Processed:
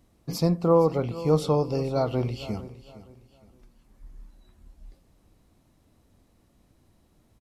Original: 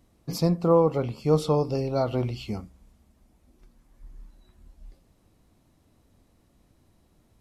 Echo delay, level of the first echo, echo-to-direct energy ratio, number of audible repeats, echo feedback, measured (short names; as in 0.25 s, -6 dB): 0.462 s, -16.5 dB, -16.0 dB, 2, 32%